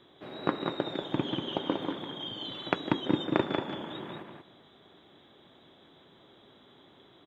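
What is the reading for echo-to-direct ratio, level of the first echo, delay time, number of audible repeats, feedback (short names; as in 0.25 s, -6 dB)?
-5.0 dB, -5.0 dB, 0.188 s, 2, 15%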